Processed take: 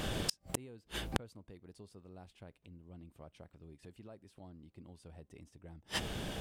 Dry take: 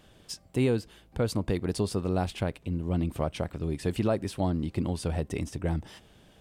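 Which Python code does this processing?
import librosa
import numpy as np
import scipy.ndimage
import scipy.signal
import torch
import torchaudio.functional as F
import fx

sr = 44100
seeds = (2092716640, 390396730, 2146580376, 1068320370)

y = fx.rider(x, sr, range_db=5, speed_s=0.5)
y = fx.gate_flip(y, sr, shuts_db=-32.0, range_db=-40)
y = F.gain(torch.from_numpy(y), 15.0).numpy()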